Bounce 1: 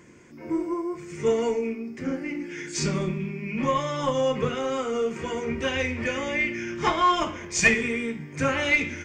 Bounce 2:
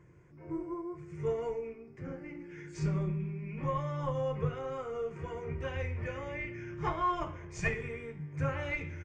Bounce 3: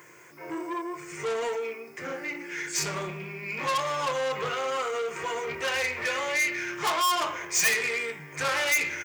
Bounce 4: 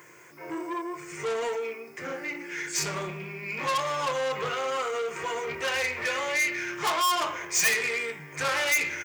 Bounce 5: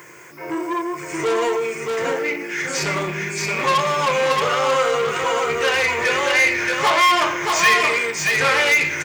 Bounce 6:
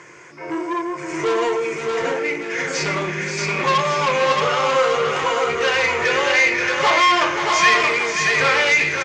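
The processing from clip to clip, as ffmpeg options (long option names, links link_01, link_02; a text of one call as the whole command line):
ffmpeg -i in.wav -af "firequalizer=gain_entry='entry(150,0);entry(230,-22);entry(330,-10);entry(1100,-10);entry(3500,-22)':delay=0.05:min_phase=1" out.wav
ffmpeg -i in.wav -filter_complex "[0:a]asplit=2[link_01][link_02];[link_02]highpass=frequency=720:poles=1,volume=25dB,asoftclip=type=tanh:threshold=-17.5dB[link_03];[link_01][link_03]amix=inputs=2:normalize=0,lowpass=frequency=6500:poles=1,volume=-6dB,aemphasis=mode=production:type=riaa,volume=-1.5dB" out.wav
ffmpeg -i in.wav -af anull out.wav
ffmpeg -i in.wav -filter_complex "[0:a]aecho=1:1:626:0.668,acrossover=split=4800[link_01][link_02];[link_02]acompressor=threshold=-39dB:ratio=4:attack=1:release=60[link_03];[link_01][link_03]amix=inputs=2:normalize=0,volume=9dB" out.wav
ffmpeg -i in.wav -af "lowpass=frequency=6800:width=0.5412,lowpass=frequency=6800:width=1.3066,aecho=1:1:529:0.398" out.wav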